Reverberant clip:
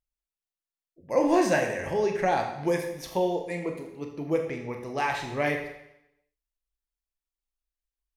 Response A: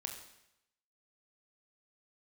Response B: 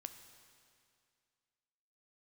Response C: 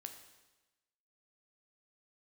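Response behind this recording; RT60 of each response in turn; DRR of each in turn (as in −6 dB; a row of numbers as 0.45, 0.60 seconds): A; 0.85, 2.3, 1.1 seconds; 3.0, 8.0, 5.5 decibels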